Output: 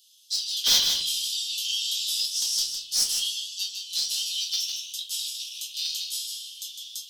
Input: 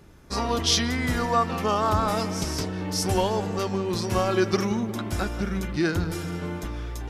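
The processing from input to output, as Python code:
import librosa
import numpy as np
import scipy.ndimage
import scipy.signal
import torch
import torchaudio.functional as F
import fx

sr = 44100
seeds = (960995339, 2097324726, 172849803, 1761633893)

p1 = fx.rattle_buzz(x, sr, strikes_db=-27.0, level_db=-27.0)
p2 = scipy.signal.sosfilt(scipy.signal.butter(16, 3000.0, 'highpass', fs=sr, output='sos'), p1)
p3 = fx.high_shelf(p2, sr, hz=3800.0, db=-4.5)
p4 = fx.rider(p3, sr, range_db=5, speed_s=2.0)
p5 = p3 + (p4 * librosa.db_to_amplitude(-1.0))
p6 = 10.0 ** (-22.0 / 20.0) * np.tanh(p5 / 10.0 ** (-22.0 / 20.0))
p7 = p6 + fx.echo_single(p6, sr, ms=156, db=-6.5, dry=0)
p8 = fx.room_shoebox(p7, sr, seeds[0], volume_m3=180.0, walls='furnished', distance_m=1.9)
p9 = fx.env_flatten(p8, sr, amount_pct=50, at=(0.95, 2.26))
y = p9 * librosa.db_to_amplitude(2.5)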